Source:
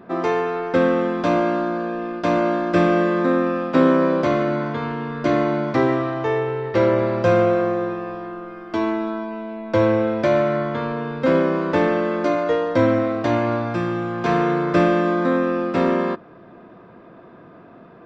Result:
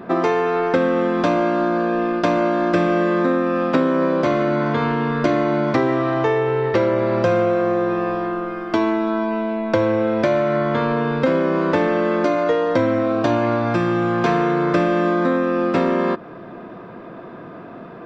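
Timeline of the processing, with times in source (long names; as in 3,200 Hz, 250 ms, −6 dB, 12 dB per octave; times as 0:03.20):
0:13.03–0:13.43: notch filter 2,000 Hz, Q 6
whole clip: parametric band 65 Hz −6.5 dB 0.97 octaves; downward compressor 5 to 1, threshold −24 dBFS; level +8.5 dB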